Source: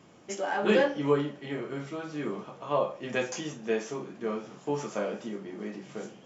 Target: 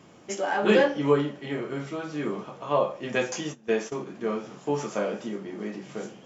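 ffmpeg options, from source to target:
-filter_complex "[0:a]asplit=3[a][b][c];[a]afade=t=out:st=3.09:d=0.02[d];[b]agate=range=-15dB:threshold=-37dB:ratio=16:detection=peak,afade=t=in:st=3.09:d=0.02,afade=t=out:st=4.05:d=0.02[e];[c]afade=t=in:st=4.05:d=0.02[f];[d][e][f]amix=inputs=3:normalize=0,volume=3.5dB"

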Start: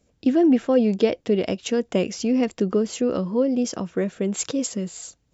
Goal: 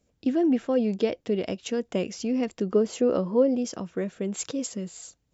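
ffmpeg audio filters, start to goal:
-filter_complex "[0:a]asettb=1/sr,asplit=3[a][b][c];[a]atrim=end=2.754[d];[b]atrim=start=2.75:end=3.57,asetpts=PTS-STARTPTS,afade=t=in:d=0.004:c=qsin,afade=t=out:st=0.816:d=0.004:c=qsin,equalizer=f=610:t=o:w=2.4:g=7[e];[c]atrim=start=3.566[f];[d][e]acrossfade=d=0.004:c1=hsin:c2=qsin[g];[g][f]acrossfade=d=0.004:c1=qsin:c2=hsin,volume=-5.5dB"

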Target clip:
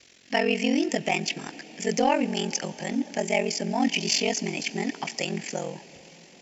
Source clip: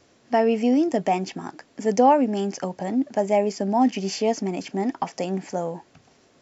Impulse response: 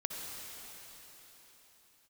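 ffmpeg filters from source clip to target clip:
-filter_complex "[0:a]aeval=exprs='val(0)*sin(2*PI*22*n/s)':c=same,highshelf=f=1.6k:t=q:w=1.5:g=11.5,acontrast=51,asplit=2[a][b];[1:a]atrim=start_sample=2205,asetrate=30870,aresample=44100[c];[b][c]afir=irnorm=-1:irlink=0,volume=-19.5dB[d];[a][d]amix=inputs=2:normalize=0,volume=-8dB"

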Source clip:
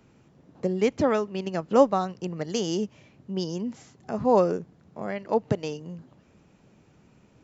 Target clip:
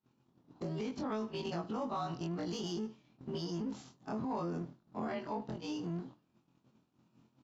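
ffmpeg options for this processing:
-filter_complex "[0:a]afftfilt=real='re':imag='-im':win_size=2048:overlap=0.75,equalizer=f=125:t=o:w=1:g=11,equalizer=f=250:t=o:w=1:g=8,equalizer=f=500:t=o:w=1:g=-11,equalizer=f=1k:t=o:w=1:g=3,equalizer=f=2k:t=o:w=1:g=-10,equalizer=f=4k:t=o:w=1:g=6,acrossover=split=240[a][b];[a]aeval=exprs='max(val(0),0)':c=same[c];[c][b]amix=inputs=2:normalize=0,highpass=57,lowshelf=f=150:g=-4,aecho=1:1:77|154:0.075|0.0255,acompressor=threshold=-37dB:ratio=6,alimiter=level_in=14.5dB:limit=-24dB:level=0:latency=1:release=44,volume=-14.5dB,agate=range=-33dB:threshold=-46dB:ratio=3:detection=peak,asplit=2[d][e];[e]highpass=f=720:p=1,volume=8dB,asoftclip=type=tanh:threshold=-36.5dB[f];[d][f]amix=inputs=2:normalize=0,lowpass=f=2.2k:p=1,volume=-6dB,volume=10dB"

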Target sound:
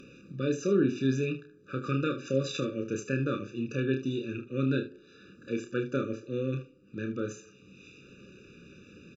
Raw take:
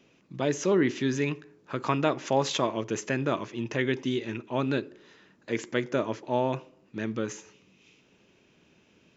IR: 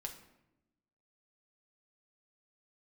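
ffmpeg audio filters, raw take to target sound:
-af "equalizer=f=780:w=0.31:g=-4,acompressor=mode=upward:threshold=-40dB:ratio=2.5,aemphasis=mode=reproduction:type=cd,aecho=1:1:30|75:0.501|0.224,afftfilt=real='re*eq(mod(floor(b*sr/1024/580),2),0)':imag='im*eq(mod(floor(b*sr/1024/580),2),0)':win_size=1024:overlap=0.75"

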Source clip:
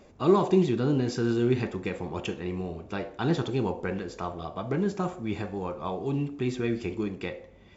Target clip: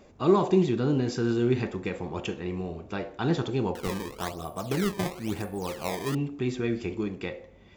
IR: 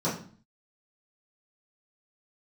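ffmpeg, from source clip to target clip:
-filter_complex "[0:a]asettb=1/sr,asplit=3[a][b][c];[a]atrim=end=3.754[d];[b]atrim=start=3.75:end=6.15,asetpts=PTS-STARTPTS,afade=t=in:d=0.004:c=qsin,afade=t=out:st=2.396:d=0.004:c=qsin,acrusher=samples=18:mix=1:aa=0.000001:lfo=1:lforange=28.8:lforate=1[e];[c]atrim=start=6.146[f];[d][e]acrossfade=d=0.004:c1=hsin:c2=qsin[g];[g][f]acrossfade=d=0.004:c1=qsin:c2=hsin"

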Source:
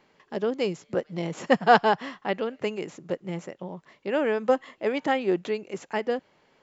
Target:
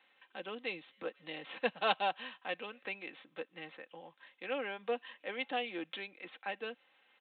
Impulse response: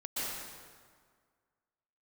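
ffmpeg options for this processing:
-filter_complex "[0:a]aderivative,aecho=1:1:3.5:0.51,acrossover=split=190|1100|2500[a][b][c][d];[c]acompressor=threshold=-59dB:ratio=6[e];[a][b][e][d]amix=inputs=4:normalize=0,asetrate=40517,aresample=44100,aresample=8000,aresample=44100,volume=7.5dB"

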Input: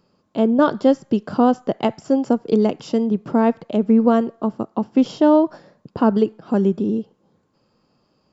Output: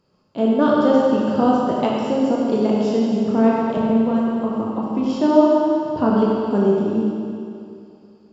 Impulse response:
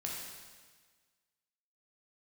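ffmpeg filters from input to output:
-filter_complex "[0:a]asettb=1/sr,asplit=3[a][b][c];[a]atrim=end=3.774[d];[b]atrim=start=3.77:end=5.1,asetpts=PTS-STARTPTS,afade=t=in:d=0.004:c=qsin,afade=t=out:st=1.326:d=0.004:c=qsin,acrossover=split=160[e][f];[f]acompressor=threshold=-18dB:ratio=6[g];[e][g]amix=inputs=2:normalize=0[h];[c]atrim=start=5.096[i];[d][h]acrossfade=d=0.004:c1=hsin:c2=qsin[j];[j][i]acrossfade=d=0.004:c1=qsin:c2=hsin[k];[1:a]atrim=start_sample=2205,asetrate=26019,aresample=44100[l];[k][l]afir=irnorm=-1:irlink=0,volume=-3.5dB"

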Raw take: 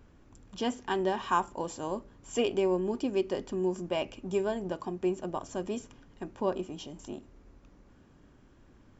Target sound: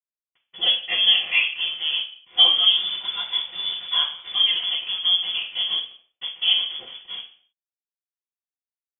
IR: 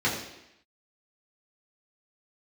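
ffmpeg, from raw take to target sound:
-filter_complex "[0:a]asettb=1/sr,asplit=3[a][b][c];[a]atrim=end=6.614[d];[b]atrim=start=6.61:end=7.14,asetpts=PTS-STARTPTS,afade=t=in:d=0.004:c=qsin,afade=t=out:st=0.526:d=0.004:c=qsin,adynamicequalizer=threshold=0.00224:dfrequency=240:dqfactor=2.5:tfrequency=240:tqfactor=2.5:attack=5:release=100:ratio=0.375:range=2:mode=cutabove:tftype=bell[e];[c]atrim=start=7.136[f];[d][e]acrossfade=d=0.004:c1=hsin:c2=qsin[g];[g][f]acrossfade=d=0.004:c1=qsin:c2=hsin,acrusher=bits=6:mix=0:aa=0.000001,aeval=exprs='sgn(val(0))*max(abs(val(0))-0.00708,0)':c=same,asettb=1/sr,asplit=3[h][i][j];[h]atrim=end=2.694[k];[i]atrim=start=2.69:end=4.34,asetpts=PTS-STARTPTS,afade=t=in:d=0.004:c=qsin,afade=t=out:st=1.646:d=0.004:c=qsin,afreqshift=-320[l];[j]atrim=start=4.336[m];[k][l]acrossfade=d=0.004:c1=hsin:c2=qsin[n];[n][m]acrossfade=d=0.004:c1=qsin:c2=hsin[o];[1:a]atrim=start_sample=2205,asetrate=74970,aresample=44100[p];[o][p]afir=irnorm=-1:irlink=0,lowpass=f=3.1k:t=q:w=0.5098,lowpass=f=3.1k:t=q:w=0.6013,lowpass=f=3.1k:t=q:w=0.9,lowpass=f=3.1k:t=q:w=2.563,afreqshift=-3600"

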